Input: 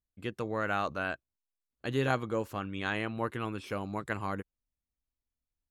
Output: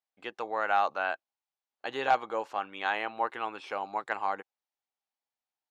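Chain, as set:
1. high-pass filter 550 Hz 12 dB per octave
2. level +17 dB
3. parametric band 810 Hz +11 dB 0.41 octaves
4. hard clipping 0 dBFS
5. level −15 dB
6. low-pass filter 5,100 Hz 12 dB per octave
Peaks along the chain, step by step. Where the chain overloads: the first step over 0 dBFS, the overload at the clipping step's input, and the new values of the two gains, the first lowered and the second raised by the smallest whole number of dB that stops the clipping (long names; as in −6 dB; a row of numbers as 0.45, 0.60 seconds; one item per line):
−14.5, +2.5, +5.0, 0.0, −15.0, −14.5 dBFS
step 2, 5.0 dB
step 2 +12 dB, step 5 −10 dB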